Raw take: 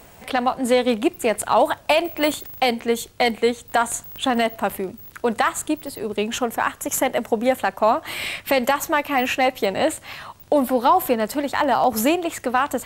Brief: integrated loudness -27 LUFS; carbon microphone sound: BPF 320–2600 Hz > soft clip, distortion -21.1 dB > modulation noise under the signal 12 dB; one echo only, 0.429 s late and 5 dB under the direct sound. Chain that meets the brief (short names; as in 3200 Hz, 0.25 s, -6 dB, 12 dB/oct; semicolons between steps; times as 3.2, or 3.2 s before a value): BPF 320–2600 Hz; echo 0.429 s -5 dB; soft clip -9 dBFS; modulation noise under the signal 12 dB; gain -5 dB